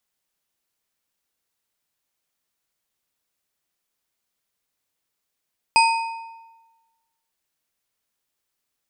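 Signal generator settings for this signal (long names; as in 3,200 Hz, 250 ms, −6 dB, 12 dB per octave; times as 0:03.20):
struck metal bar, lowest mode 910 Hz, modes 4, decay 1.23 s, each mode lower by 4 dB, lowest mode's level −12 dB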